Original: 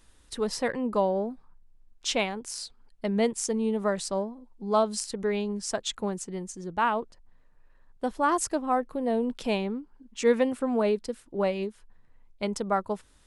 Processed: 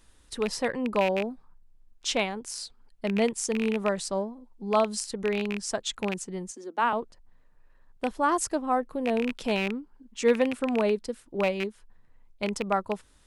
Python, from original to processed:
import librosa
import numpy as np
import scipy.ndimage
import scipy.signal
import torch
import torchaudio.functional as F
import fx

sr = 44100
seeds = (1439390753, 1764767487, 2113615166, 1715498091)

y = fx.rattle_buzz(x, sr, strikes_db=-33.0, level_db=-20.0)
y = fx.steep_highpass(y, sr, hz=220.0, slope=72, at=(6.51, 6.93))